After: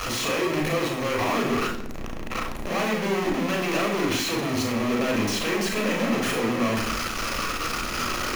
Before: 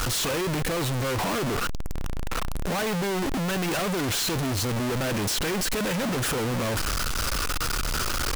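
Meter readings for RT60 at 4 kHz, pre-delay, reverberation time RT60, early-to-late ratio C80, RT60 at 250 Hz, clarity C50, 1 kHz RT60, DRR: 0.80 s, 32 ms, 0.65 s, 10.5 dB, 0.90 s, 7.0 dB, 0.65 s, 0.0 dB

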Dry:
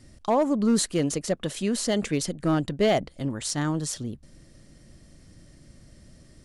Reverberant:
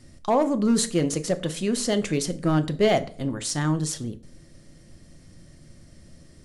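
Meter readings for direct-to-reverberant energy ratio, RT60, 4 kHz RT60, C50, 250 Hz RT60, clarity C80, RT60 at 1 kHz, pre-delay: 9.5 dB, 0.45 s, 0.35 s, 18.0 dB, 0.50 s, 22.0 dB, 0.40 s, 6 ms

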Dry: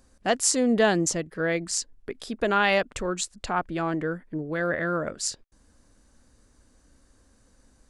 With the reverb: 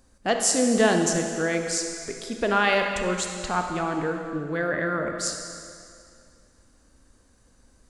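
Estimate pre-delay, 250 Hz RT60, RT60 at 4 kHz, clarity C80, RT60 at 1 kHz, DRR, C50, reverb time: 27 ms, 2.1 s, 2.2 s, 5.5 dB, 2.4 s, 3.5 dB, 4.5 dB, 2.3 s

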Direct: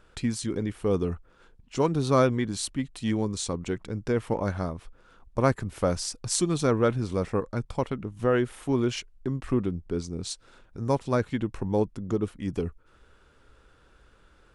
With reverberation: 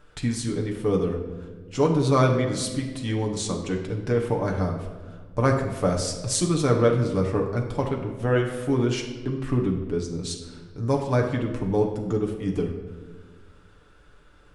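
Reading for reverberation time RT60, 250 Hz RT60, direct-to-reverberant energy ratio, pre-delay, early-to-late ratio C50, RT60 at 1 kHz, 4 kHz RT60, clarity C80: 1.5 s, 1.9 s, 0.5 dB, 7 ms, 6.5 dB, 1.2 s, 1.0 s, 8.5 dB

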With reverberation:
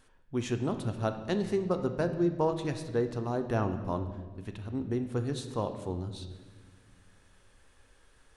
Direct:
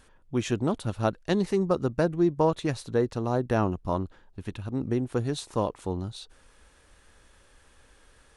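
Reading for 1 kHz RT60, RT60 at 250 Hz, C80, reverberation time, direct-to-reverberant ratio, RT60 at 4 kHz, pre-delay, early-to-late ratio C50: 1.2 s, 2.4 s, 11.0 dB, 1.4 s, 7.0 dB, 1.1 s, 3 ms, 9.5 dB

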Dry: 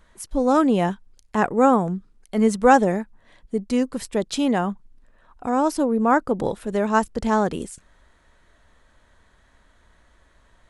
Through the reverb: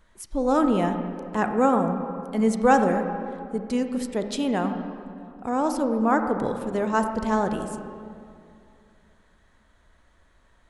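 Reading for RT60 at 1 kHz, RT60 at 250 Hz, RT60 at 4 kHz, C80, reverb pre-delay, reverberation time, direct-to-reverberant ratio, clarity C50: 2.3 s, 2.9 s, 1.6 s, 8.0 dB, 26 ms, 2.4 s, 6.0 dB, 7.0 dB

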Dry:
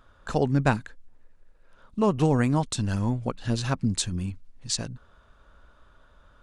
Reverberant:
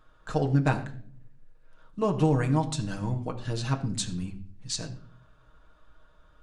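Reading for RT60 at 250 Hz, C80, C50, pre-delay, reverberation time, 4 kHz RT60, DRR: 0.90 s, 15.5 dB, 13.0 dB, 6 ms, 0.50 s, 0.45 s, 1.5 dB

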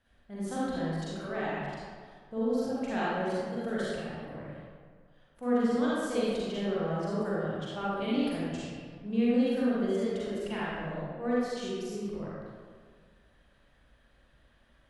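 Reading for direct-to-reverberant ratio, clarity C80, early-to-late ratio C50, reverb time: −9.0 dB, −2.5 dB, −5.5 dB, 1.8 s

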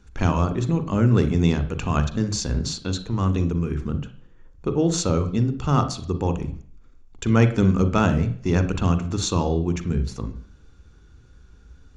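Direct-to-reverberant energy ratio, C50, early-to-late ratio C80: 9.0 dB, 12.0 dB, 16.5 dB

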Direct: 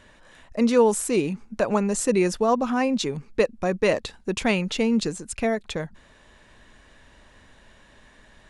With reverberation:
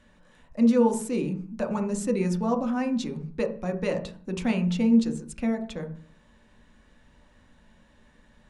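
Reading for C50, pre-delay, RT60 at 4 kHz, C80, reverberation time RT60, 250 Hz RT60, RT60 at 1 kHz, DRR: 11.0 dB, 3 ms, 0.40 s, 16.5 dB, 0.45 s, 0.75 s, 0.40 s, 3.5 dB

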